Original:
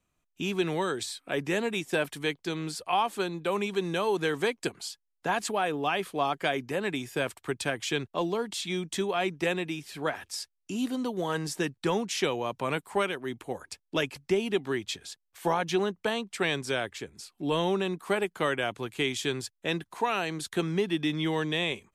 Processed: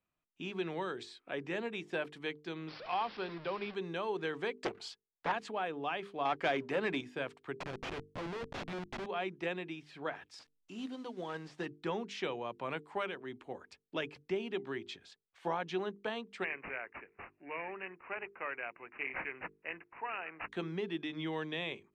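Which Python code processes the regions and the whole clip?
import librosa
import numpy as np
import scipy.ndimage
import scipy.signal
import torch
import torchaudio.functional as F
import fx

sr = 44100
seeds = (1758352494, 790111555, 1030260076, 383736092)

y = fx.chain(x, sr, fx.delta_mod(bps=32000, step_db=-32.0),
    fx.resample_bad(factor=4, down='none', up='filtered'), at=(2.68, 3.74))
y = fx.chain(y, sr, fx.leveller(passes=2),
    fx.doppler_dist(depth_ms=0.52), at=(4.57, 5.32))
y = fx.chain(y, sr, fx.highpass(hz=130.0, slope=6),
    fx.leveller(passes=2), at=(6.25, 7.01))
y = fx.chain(y, sr, fx.ripple_eq(per_octave=0.78, db=6),
    fx.schmitt(flips_db=-30.5), at=(7.58, 9.06))
y = fx.chain(y, sr, fx.delta_mod(bps=64000, step_db=-45.5),
    fx.high_shelf(hz=3900.0, db=7.0),
    fx.upward_expand(threshold_db=-46.0, expansion=1.5), at=(10.39, 11.66))
y = fx.chain(y, sr, fx.highpass(hz=1100.0, slope=6),
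    fx.high_shelf(hz=6400.0, db=10.0),
    fx.resample_bad(factor=8, down='none', up='filtered'), at=(16.44, 20.49))
y = scipy.signal.sosfilt(scipy.signal.butter(2, 3500.0, 'lowpass', fs=sr, output='sos'), y)
y = fx.low_shelf(y, sr, hz=96.0, db=-9.0)
y = fx.hum_notches(y, sr, base_hz=50, count=9)
y = y * librosa.db_to_amplitude(-8.0)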